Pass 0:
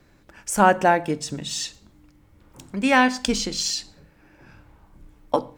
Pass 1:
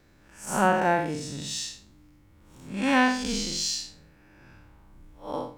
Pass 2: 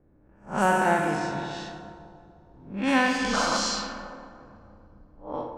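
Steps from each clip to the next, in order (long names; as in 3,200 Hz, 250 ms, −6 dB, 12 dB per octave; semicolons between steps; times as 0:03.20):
spectrum smeared in time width 152 ms; parametric band 570 Hz −2 dB 2 octaves
sound drawn into the spectrogram noise, 0:03.33–0:03.57, 480–1,600 Hz −26 dBFS; four-comb reverb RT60 2.9 s, combs from 26 ms, DRR 2.5 dB; low-pass that shuts in the quiet parts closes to 670 Hz, open at −19 dBFS; level −1 dB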